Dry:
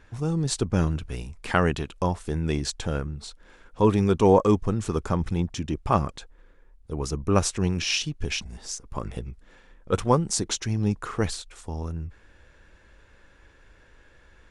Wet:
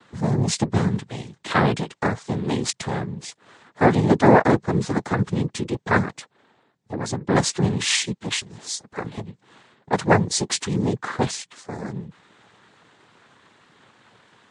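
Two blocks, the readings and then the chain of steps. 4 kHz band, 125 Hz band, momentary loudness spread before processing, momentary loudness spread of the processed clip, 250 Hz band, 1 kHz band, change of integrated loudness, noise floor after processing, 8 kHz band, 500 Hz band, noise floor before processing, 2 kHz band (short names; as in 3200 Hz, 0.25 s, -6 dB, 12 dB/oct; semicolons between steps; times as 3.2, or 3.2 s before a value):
+4.0 dB, +2.0 dB, 15 LU, 16 LU, +3.5 dB, +5.0 dB, +3.5 dB, -67 dBFS, +4.0 dB, +2.0 dB, -56 dBFS, +8.0 dB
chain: noise vocoder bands 6; gain +4.5 dB; MP3 48 kbps 32000 Hz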